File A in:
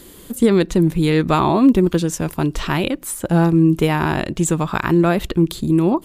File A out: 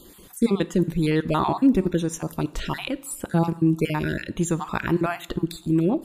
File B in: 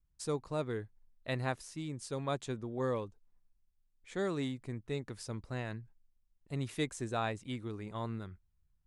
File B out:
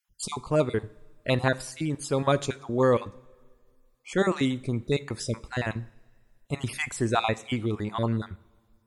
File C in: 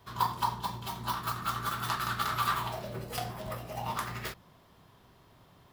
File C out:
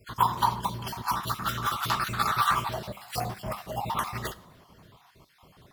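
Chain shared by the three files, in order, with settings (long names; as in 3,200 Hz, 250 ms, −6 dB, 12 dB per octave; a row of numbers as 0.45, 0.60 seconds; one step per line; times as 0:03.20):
time-frequency cells dropped at random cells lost 35%
coupled-rooms reverb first 0.54 s, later 2.2 s, from −18 dB, DRR 15 dB
MP3 320 kbit/s 44,100 Hz
normalise the peak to −9 dBFS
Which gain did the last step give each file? −5.5, +12.5, +6.0 decibels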